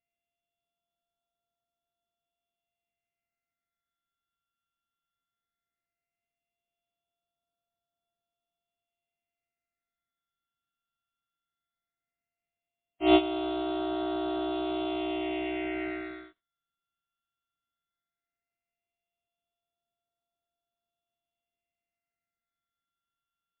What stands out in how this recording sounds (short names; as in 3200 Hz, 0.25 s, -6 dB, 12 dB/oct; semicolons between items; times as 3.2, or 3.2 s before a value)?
a buzz of ramps at a fixed pitch in blocks of 64 samples; phasing stages 8, 0.16 Hz, lowest notch 660–2100 Hz; MP3